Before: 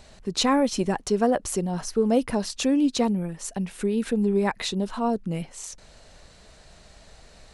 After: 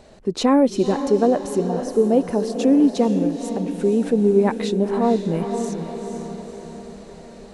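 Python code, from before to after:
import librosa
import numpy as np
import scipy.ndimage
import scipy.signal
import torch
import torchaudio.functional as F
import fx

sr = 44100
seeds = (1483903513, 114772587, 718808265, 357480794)

p1 = x + fx.echo_diffused(x, sr, ms=491, feedback_pct=51, wet_db=-8.5, dry=0)
p2 = fx.rider(p1, sr, range_db=5, speed_s=2.0)
p3 = fx.peak_eq(p2, sr, hz=380.0, db=13.0, octaves=2.6)
y = p3 * librosa.db_to_amplitude(-6.0)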